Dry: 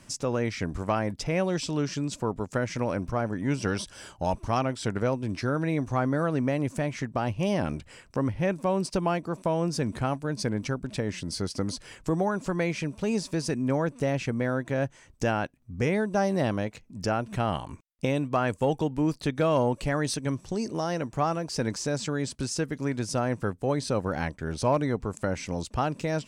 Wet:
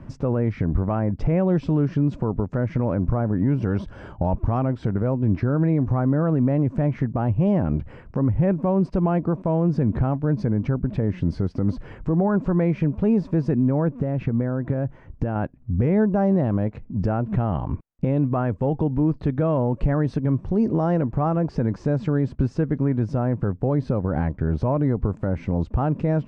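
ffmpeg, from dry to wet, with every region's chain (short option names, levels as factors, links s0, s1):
-filter_complex "[0:a]asettb=1/sr,asplit=3[s0][s1][s2];[s0]atrim=end=13.924[s3];[s1]atrim=start=13.92:end=15.36,asetpts=PTS-STARTPTS,afade=t=in:d=0.004:c=qsin,afade=t=out:st=1.436:d=0.004:c=qsin,highshelf=f=6700:g=-9.5,acompressor=threshold=0.0316:ratio=12:attack=3.2:release=140:knee=1:detection=peak[s4];[s2]atrim=start=15.356[s5];[s3][s4]acrossfade=d=0.004:c1=hsin:c2=qsin[s6];[s6][s5]acrossfade=d=0.004:c1=qsin:c2=hsin,lowpass=1300,lowshelf=f=280:g=10.5,alimiter=limit=0.112:level=0:latency=1:release=126,volume=2.24"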